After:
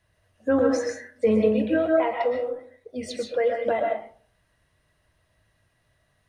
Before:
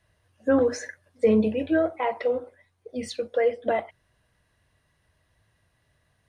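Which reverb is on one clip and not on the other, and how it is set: digital reverb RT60 0.46 s, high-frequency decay 0.45×, pre-delay 90 ms, DRR 1.5 dB; gain -1 dB

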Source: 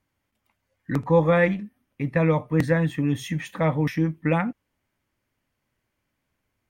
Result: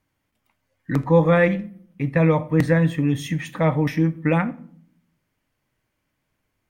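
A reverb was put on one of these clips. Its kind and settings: shoebox room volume 820 m³, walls furnished, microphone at 0.51 m; gain +2 dB

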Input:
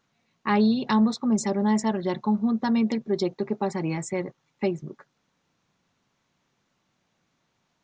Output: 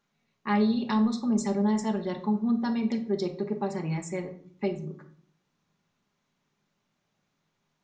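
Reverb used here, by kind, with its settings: shoebox room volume 670 m³, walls furnished, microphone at 1.3 m; gain -6 dB

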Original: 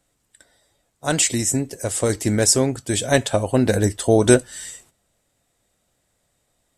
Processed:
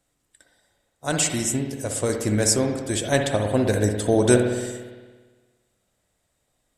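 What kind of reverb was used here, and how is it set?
spring tank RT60 1.4 s, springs 57 ms, chirp 35 ms, DRR 4 dB; gain -4 dB

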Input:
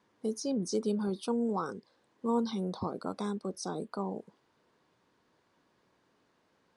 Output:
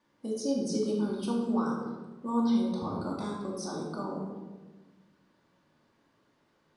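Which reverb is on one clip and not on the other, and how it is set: shoebox room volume 830 m³, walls mixed, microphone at 2.5 m; gain -4 dB

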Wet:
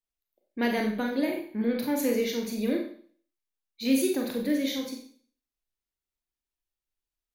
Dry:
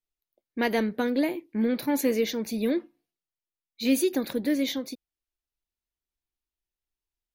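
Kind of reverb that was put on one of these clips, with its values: Schroeder reverb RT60 0.5 s, combs from 30 ms, DRR 1.5 dB; gain -3.5 dB

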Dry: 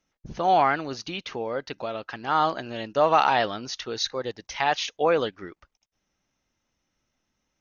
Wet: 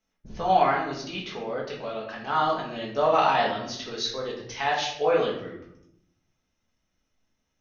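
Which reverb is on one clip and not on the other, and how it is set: shoebox room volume 170 m³, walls mixed, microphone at 1.5 m; gain -6.5 dB

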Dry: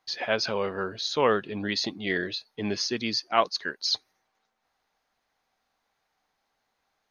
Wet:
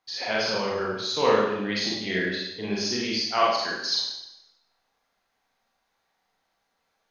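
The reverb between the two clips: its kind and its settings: Schroeder reverb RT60 0.86 s, combs from 33 ms, DRR -5 dB; gain -4 dB

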